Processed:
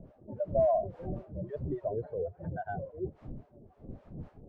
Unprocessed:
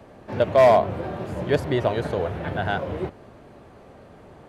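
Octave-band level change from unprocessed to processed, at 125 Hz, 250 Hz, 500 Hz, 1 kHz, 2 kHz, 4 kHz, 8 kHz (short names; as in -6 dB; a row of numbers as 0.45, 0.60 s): -10.0 dB, -11.5 dB, -11.0 dB, -13.5 dB, -20.5 dB, under -35 dB, n/a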